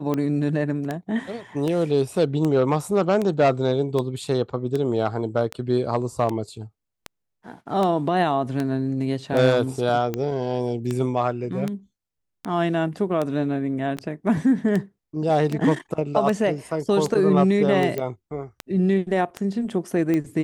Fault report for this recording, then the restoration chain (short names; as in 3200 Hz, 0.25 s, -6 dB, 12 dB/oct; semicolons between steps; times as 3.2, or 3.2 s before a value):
tick 78 rpm -13 dBFS
13.97–13.98 gap 5.8 ms
17.98 pop -14 dBFS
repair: de-click; interpolate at 13.97, 5.8 ms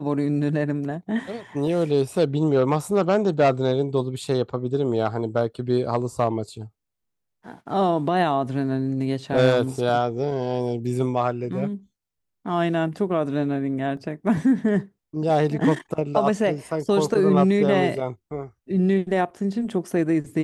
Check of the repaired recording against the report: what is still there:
none